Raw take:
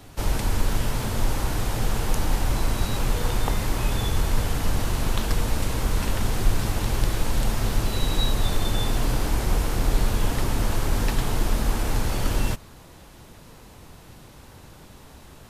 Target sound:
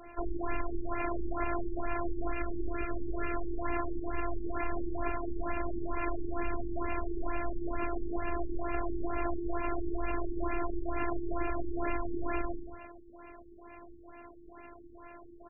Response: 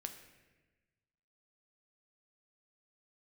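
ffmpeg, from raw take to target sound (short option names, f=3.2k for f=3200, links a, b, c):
-filter_complex "[0:a]asettb=1/sr,asplit=3[a][b][c];[a]atrim=end=2.324[d];[b]atrim=start=2.32:end=3.35,asetpts=PTS-STARTPTS,afade=t=in:d=0.004:c=qsin,afade=t=out:st=1.026:d=0.004:c=qsin,asuperstop=centerf=860:order=4:qfactor=1.9[e];[c]atrim=start=3.346[f];[d][e]acrossfade=d=0.004:c1=hsin:c2=qsin[g];[g][f]acrossfade=d=0.004:c1=qsin:c2=hsin,aecho=1:1:111|222|333|444|555|666:0.158|0.0935|0.0552|0.0326|0.0192|0.0113,asplit=2[h][i];[1:a]atrim=start_sample=2205,afade=t=out:st=0.39:d=0.01,atrim=end_sample=17640[j];[i][j]afir=irnorm=-1:irlink=0,volume=5.5dB[k];[h][k]amix=inputs=2:normalize=0,alimiter=limit=-10dB:level=0:latency=1:release=98,bass=f=250:g=-10,treble=f=4k:g=12,afftfilt=real='hypot(re,im)*cos(PI*b)':imag='0':win_size=512:overlap=0.75,afftfilt=real='re*lt(b*sr/1024,400*pow(2800/400,0.5+0.5*sin(2*PI*2.2*pts/sr)))':imag='im*lt(b*sr/1024,400*pow(2800/400,0.5+0.5*sin(2*PI*2.2*pts/sr)))':win_size=1024:overlap=0.75,volume=-2dB"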